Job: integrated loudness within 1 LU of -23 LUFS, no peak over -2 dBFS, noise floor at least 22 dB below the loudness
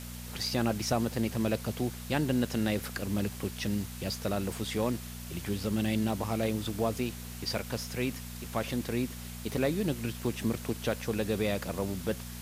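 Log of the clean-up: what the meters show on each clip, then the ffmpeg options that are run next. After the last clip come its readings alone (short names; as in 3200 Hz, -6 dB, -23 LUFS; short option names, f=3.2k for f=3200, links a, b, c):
hum 60 Hz; harmonics up to 240 Hz; hum level -41 dBFS; noise floor -42 dBFS; noise floor target -55 dBFS; loudness -32.5 LUFS; peak -15.5 dBFS; loudness target -23.0 LUFS
-> -af "bandreject=f=60:t=h:w=4,bandreject=f=120:t=h:w=4,bandreject=f=180:t=h:w=4,bandreject=f=240:t=h:w=4"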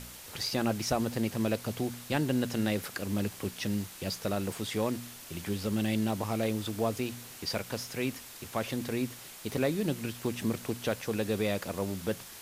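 hum none; noise floor -48 dBFS; noise floor target -55 dBFS
-> -af "afftdn=nr=7:nf=-48"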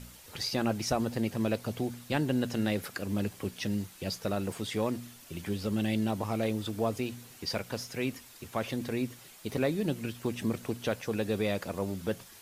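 noise floor -53 dBFS; noise floor target -55 dBFS
-> -af "afftdn=nr=6:nf=-53"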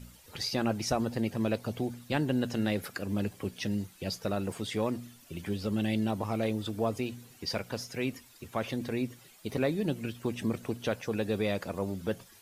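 noise floor -57 dBFS; loudness -33.0 LUFS; peak -15.0 dBFS; loudness target -23.0 LUFS
-> -af "volume=10dB"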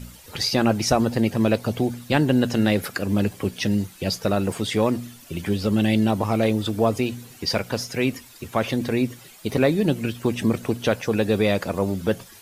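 loudness -23.0 LUFS; peak -5.0 dBFS; noise floor -47 dBFS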